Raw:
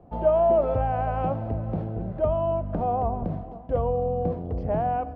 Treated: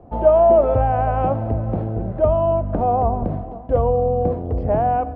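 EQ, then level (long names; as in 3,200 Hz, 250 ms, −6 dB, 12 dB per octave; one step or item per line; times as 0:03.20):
low-pass filter 2,200 Hz 6 dB per octave
parametric band 170 Hz −7 dB 0.26 octaves
+7.5 dB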